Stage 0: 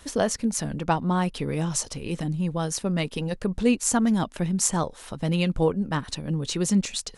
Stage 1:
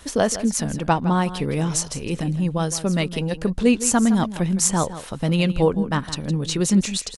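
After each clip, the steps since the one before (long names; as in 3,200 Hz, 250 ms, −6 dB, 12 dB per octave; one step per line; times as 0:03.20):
single-tap delay 162 ms −13.5 dB
level +4 dB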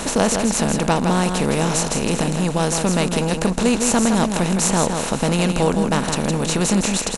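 compressor on every frequency bin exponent 0.4
level −3.5 dB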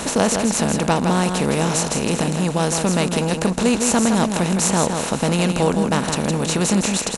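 high-pass filter 50 Hz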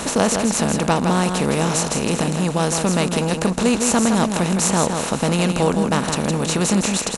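parametric band 1,200 Hz +2.5 dB 0.22 octaves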